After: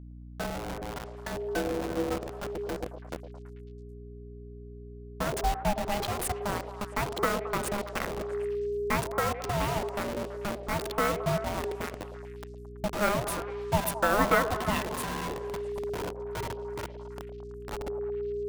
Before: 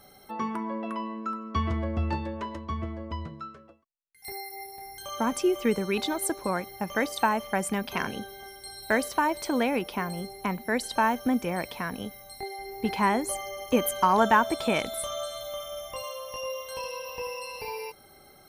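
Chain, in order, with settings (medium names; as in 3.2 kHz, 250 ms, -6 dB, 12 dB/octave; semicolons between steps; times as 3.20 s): send-on-delta sampling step -25 dBFS; ring modulator 410 Hz; mains buzz 60 Hz, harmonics 5, -45 dBFS -6 dB/octave; on a send: repeats whose band climbs or falls 110 ms, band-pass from 530 Hz, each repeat 0.7 oct, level -7 dB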